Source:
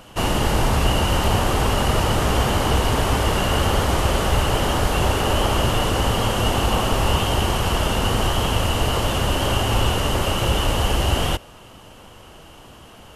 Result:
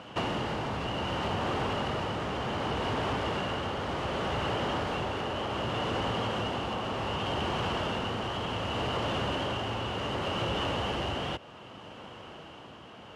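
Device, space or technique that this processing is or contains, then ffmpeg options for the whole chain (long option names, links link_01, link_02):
AM radio: -af "highpass=120,lowpass=3700,acompressor=threshold=-26dB:ratio=6,asoftclip=type=tanh:threshold=-22dB,tremolo=f=0.66:d=0.29"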